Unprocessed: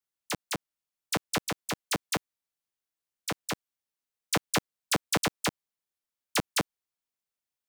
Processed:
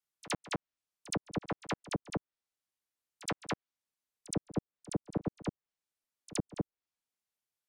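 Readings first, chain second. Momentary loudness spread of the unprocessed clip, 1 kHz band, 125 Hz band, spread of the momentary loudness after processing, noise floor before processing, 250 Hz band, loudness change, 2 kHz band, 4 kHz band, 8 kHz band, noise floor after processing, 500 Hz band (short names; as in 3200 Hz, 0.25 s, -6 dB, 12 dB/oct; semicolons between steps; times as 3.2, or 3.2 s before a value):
9 LU, -8.5 dB, -1.5 dB, 5 LU, under -85 dBFS, -2.0 dB, -7.5 dB, -11.0 dB, -12.5 dB, -11.0 dB, under -85 dBFS, -5.0 dB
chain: treble ducked by the level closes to 390 Hz, closed at -25 dBFS; pre-echo 70 ms -17 dB; gain -1.5 dB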